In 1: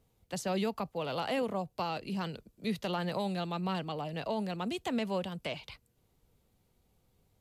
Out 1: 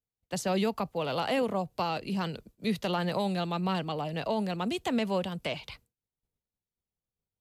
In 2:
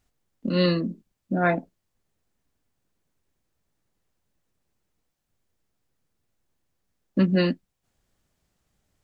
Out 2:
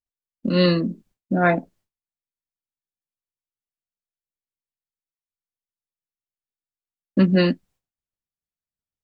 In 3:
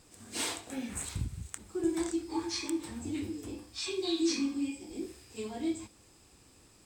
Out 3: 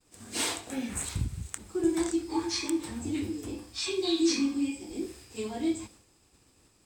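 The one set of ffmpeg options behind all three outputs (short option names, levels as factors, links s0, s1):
-af "agate=range=0.0224:threshold=0.00224:ratio=3:detection=peak,volume=1.58"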